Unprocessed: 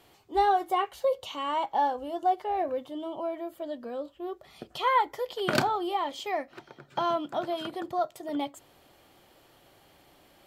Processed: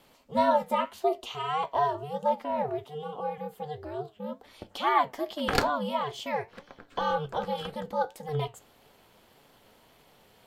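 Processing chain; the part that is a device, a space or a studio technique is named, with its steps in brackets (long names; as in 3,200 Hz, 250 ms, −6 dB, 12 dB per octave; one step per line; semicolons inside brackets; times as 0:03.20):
alien voice (ring modulation 150 Hz; flanger 1.8 Hz, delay 6.7 ms, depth 3.1 ms, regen +77%)
0:02.84–0:03.38: high-pass filter 180 Hz
level +7 dB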